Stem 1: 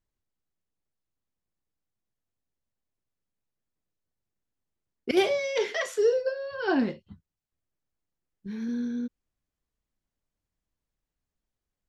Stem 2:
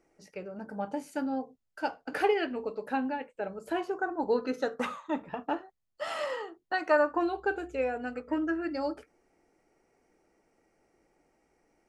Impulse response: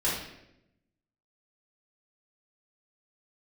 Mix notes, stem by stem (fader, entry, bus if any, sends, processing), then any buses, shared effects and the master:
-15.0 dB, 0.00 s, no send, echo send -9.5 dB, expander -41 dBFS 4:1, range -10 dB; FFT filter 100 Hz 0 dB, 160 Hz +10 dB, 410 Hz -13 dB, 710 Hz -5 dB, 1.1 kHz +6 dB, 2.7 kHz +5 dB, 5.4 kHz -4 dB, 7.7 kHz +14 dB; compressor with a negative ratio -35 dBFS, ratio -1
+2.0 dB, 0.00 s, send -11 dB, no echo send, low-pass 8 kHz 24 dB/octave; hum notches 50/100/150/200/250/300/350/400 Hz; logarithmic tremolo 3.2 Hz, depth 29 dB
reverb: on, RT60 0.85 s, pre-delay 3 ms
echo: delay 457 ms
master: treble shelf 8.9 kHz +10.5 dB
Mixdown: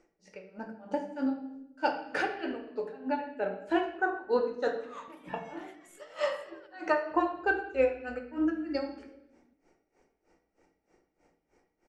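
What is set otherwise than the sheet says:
stem 1 -15.0 dB -> -25.0 dB; master: missing treble shelf 8.9 kHz +10.5 dB

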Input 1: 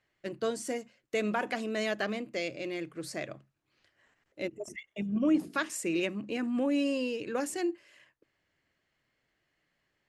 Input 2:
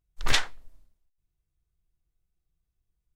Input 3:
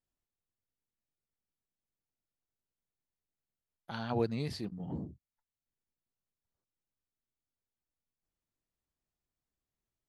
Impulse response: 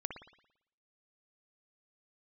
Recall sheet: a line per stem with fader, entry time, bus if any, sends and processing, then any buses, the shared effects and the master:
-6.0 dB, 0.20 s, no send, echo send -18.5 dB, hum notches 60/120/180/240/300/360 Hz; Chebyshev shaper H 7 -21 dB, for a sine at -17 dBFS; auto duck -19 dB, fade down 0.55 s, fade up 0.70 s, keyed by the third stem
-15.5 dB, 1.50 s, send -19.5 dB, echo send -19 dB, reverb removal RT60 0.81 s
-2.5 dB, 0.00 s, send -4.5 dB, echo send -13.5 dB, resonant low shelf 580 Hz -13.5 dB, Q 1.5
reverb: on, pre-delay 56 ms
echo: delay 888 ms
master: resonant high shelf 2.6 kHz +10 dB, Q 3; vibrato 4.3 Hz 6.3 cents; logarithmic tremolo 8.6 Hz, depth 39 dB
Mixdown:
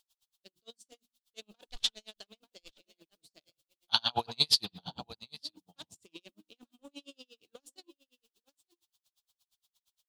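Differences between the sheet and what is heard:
stem 1 -6.0 dB -> -16.5 dB; stem 3 -2.5 dB -> +9.0 dB

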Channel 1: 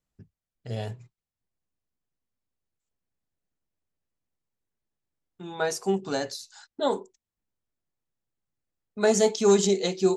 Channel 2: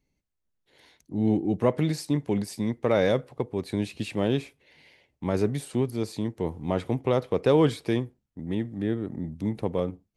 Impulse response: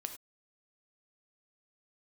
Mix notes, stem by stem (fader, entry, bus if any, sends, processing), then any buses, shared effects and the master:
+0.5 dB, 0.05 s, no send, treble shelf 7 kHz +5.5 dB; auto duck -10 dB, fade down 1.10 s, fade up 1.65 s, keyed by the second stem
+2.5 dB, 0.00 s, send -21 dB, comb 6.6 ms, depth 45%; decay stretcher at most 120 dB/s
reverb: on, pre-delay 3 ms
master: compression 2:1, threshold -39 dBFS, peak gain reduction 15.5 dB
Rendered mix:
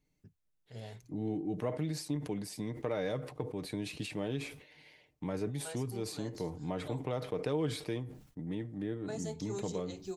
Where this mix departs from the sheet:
stem 1 +0.5 dB -> -5.5 dB; stem 2 +2.5 dB -> -4.0 dB

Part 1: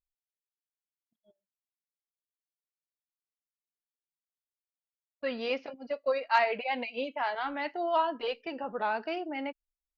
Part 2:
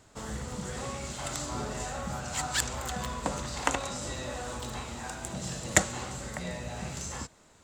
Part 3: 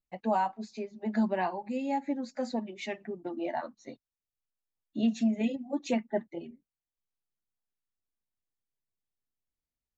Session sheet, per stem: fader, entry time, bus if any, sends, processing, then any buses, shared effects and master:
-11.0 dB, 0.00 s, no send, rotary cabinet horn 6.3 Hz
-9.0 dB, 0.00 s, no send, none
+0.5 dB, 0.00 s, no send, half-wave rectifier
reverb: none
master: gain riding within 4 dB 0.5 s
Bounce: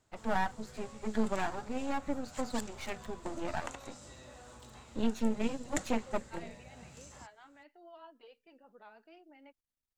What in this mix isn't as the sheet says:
stem 1 -11.0 dB -> -20.5 dB; stem 2 -9.0 dB -> -15.5 dB; master: missing gain riding within 4 dB 0.5 s

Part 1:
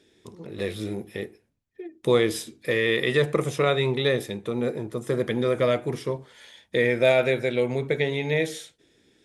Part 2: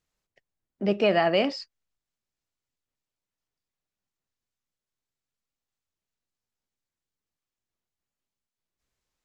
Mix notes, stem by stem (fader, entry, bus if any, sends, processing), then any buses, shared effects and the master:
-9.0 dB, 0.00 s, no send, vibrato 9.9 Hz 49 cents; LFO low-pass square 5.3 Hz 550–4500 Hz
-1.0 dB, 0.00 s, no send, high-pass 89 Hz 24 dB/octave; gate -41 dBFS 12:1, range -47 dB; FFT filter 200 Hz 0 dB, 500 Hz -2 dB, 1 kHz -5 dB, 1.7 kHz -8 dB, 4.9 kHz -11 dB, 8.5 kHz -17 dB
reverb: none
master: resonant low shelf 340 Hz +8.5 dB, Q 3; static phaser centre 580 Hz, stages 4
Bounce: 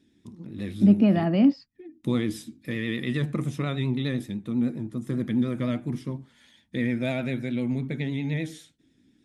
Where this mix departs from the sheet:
stem 1: missing LFO low-pass square 5.3 Hz 550–4500 Hz; master: missing static phaser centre 580 Hz, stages 4

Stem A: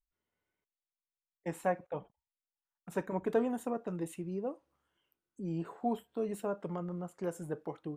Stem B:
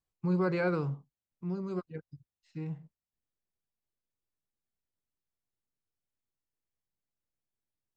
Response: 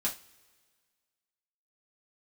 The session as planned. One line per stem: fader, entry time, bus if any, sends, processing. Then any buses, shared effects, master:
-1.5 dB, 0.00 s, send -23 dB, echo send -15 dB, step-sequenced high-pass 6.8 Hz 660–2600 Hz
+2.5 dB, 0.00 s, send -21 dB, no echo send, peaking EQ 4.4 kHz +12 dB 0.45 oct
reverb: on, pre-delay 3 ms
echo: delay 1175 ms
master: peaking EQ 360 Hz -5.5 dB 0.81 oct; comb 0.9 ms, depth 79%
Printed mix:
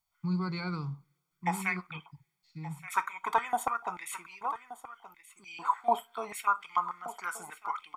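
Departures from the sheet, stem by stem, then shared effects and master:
stem A -1.5 dB -> +7.5 dB; stem B +2.5 dB -> -6.5 dB

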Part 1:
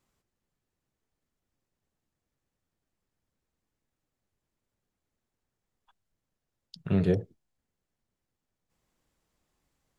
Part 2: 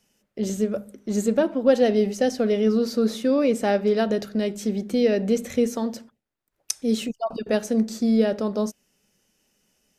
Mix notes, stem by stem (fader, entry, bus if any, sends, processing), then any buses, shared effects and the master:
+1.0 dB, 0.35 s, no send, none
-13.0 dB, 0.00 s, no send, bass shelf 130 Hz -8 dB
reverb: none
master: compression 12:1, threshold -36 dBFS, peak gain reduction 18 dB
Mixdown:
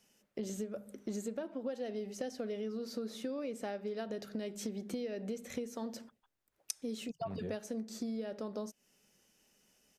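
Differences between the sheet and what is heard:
stem 1 +1.0 dB -> -9.0 dB; stem 2 -13.0 dB -> -2.0 dB

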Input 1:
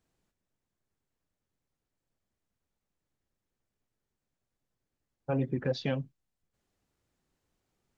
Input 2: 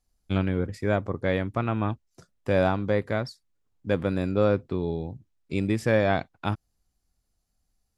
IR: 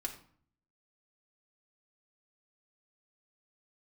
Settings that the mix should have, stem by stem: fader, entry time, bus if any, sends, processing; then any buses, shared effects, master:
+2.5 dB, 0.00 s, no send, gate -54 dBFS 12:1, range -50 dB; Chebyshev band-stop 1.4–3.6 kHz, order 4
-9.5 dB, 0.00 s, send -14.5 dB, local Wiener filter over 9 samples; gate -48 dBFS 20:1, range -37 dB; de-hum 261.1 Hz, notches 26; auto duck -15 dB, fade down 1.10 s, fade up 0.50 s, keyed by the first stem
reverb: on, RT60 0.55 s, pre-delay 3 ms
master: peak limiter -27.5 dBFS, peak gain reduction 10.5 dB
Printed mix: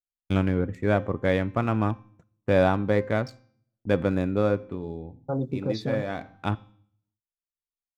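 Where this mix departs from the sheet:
stem 2 -9.5 dB -> +1.0 dB; master: missing peak limiter -27.5 dBFS, peak gain reduction 10.5 dB

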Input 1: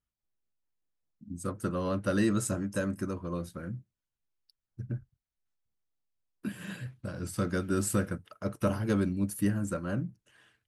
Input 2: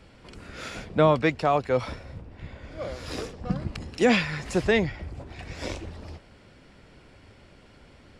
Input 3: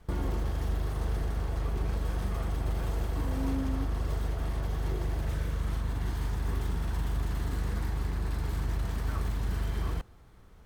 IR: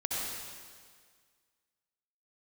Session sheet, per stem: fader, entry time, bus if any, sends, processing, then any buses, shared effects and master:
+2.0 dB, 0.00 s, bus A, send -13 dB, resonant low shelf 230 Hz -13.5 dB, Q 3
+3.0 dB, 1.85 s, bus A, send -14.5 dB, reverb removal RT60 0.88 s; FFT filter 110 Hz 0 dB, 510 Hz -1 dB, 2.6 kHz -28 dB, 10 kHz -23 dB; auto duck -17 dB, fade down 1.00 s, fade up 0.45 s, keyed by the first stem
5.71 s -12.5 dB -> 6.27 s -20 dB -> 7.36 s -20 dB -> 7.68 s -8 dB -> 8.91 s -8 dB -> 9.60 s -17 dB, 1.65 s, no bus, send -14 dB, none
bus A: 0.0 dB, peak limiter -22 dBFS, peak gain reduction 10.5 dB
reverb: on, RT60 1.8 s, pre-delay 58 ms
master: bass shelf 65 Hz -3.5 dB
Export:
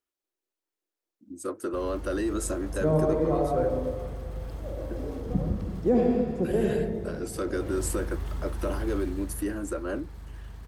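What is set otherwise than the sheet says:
stem 1: send off; reverb return +6.5 dB

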